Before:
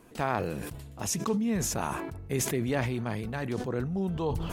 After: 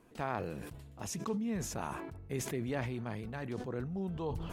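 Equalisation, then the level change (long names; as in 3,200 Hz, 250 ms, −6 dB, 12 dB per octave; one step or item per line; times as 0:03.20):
high-shelf EQ 5,300 Hz −5.5 dB
−7.0 dB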